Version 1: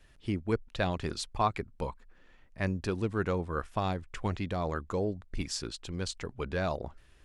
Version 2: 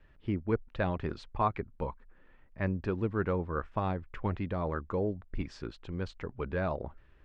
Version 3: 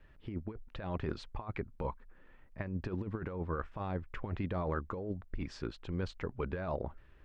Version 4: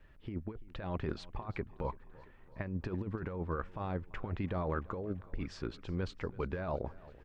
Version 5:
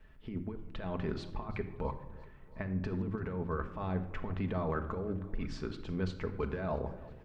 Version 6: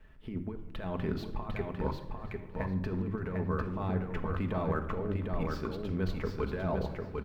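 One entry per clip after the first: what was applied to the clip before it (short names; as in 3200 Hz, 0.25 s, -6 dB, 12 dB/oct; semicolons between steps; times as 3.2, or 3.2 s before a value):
LPF 2000 Hz 12 dB/oct; notch 710 Hz, Q 14
negative-ratio compressor -33 dBFS, ratio -0.5; gain -2 dB
feedback echo 0.337 s, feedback 59%, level -20.5 dB
shoebox room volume 2800 m³, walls furnished, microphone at 1.5 m
median filter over 5 samples; feedback echo 0.75 s, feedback 17%, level -4 dB; gain +1.5 dB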